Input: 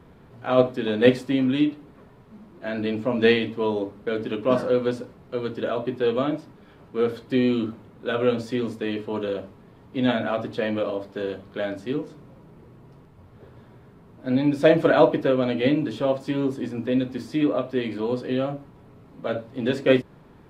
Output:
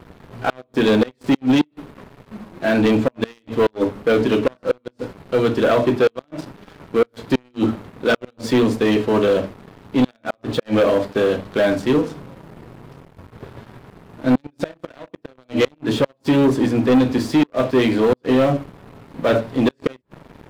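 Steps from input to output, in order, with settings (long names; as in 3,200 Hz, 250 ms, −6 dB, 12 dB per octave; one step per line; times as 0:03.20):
gate with flip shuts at −13 dBFS, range −33 dB
leveller curve on the samples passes 3
level +2 dB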